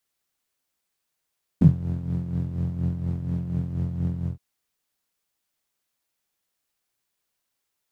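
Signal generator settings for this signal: synth patch with tremolo F2, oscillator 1 saw, oscillator 2 level -14.5 dB, noise -3.5 dB, filter bandpass, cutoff 120 Hz, Q 12, filter envelope 1 oct, filter decay 0.06 s, filter sustain 20%, attack 4.5 ms, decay 0.11 s, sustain -9.5 dB, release 0.13 s, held 2.64 s, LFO 4.2 Hz, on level 7.5 dB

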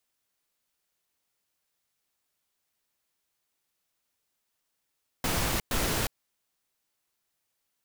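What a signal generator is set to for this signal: noise bursts pink, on 0.36 s, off 0.11 s, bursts 2, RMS -28 dBFS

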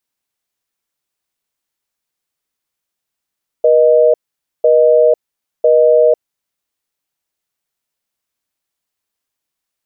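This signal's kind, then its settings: call progress tone busy tone, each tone -9 dBFS 2.97 s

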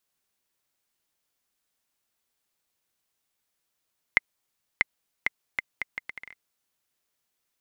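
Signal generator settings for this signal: bouncing ball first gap 0.64 s, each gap 0.71, 2080 Hz, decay 21 ms -3.5 dBFS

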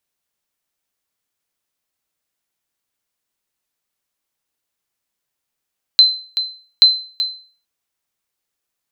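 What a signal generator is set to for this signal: sonar ping 4070 Hz, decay 0.42 s, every 0.83 s, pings 2, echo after 0.38 s, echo -11 dB -1.5 dBFS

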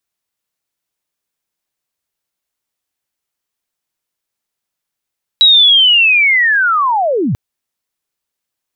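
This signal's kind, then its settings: chirp linear 3900 Hz -> 91 Hz -3.5 dBFS -> -12 dBFS 1.94 s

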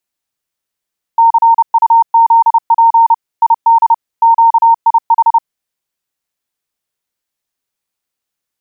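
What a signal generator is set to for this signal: Morse "CUZP ID QIH" 30 wpm 918 Hz -3.5 dBFS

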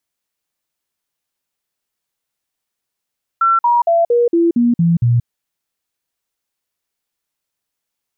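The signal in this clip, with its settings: stepped sine 1350 Hz down, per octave 2, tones 8, 0.18 s, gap 0.05 s -9.5 dBFS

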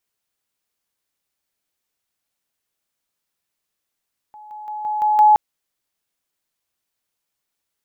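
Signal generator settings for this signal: level ladder 848 Hz -38 dBFS, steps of 6 dB, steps 6, 0.17 s 0.00 s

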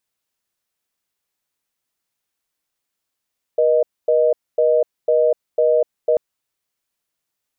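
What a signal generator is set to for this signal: call progress tone reorder tone, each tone -15 dBFS 2.59 s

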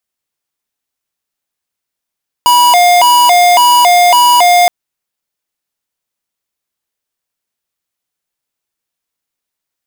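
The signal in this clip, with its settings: siren hi-lo 708–973 Hz 1.8/s square -6.5 dBFS 2.22 s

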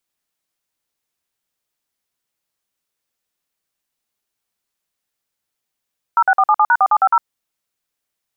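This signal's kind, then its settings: DTMF "06477#4750", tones 56 ms, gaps 50 ms, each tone -12 dBFS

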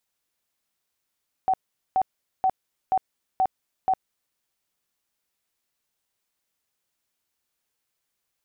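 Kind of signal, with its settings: tone bursts 757 Hz, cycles 43, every 0.48 s, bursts 6, -17.5 dBFS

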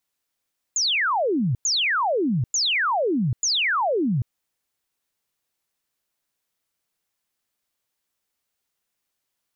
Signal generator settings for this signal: burst of laser zaps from 7200 Hz, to 110 Hz, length 0.79 s sine, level -19 dB, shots 4, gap 0.10 s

